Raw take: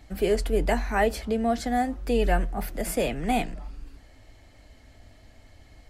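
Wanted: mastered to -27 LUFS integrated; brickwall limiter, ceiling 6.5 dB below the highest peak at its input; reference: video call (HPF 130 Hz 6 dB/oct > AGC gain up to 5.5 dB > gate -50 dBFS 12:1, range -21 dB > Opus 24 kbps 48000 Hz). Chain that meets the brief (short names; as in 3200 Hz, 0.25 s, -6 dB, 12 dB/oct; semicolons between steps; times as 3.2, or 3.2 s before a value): limiter -17 dBFS; HPF 130 Hz 6 dB/oct; AGC gain up to 5.5 dB; gate -50 dBFS 12:1, range -21 dB; gain +3 dB; Opus 24 kbps 48000 Hz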